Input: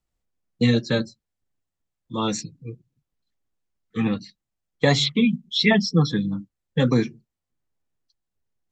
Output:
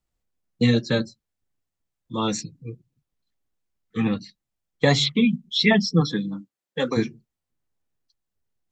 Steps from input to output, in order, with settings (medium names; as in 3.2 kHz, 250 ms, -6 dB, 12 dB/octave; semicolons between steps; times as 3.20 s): 6.00–6.96 s: high-pass 160 Hz -> 410 Hz 12 dB/octave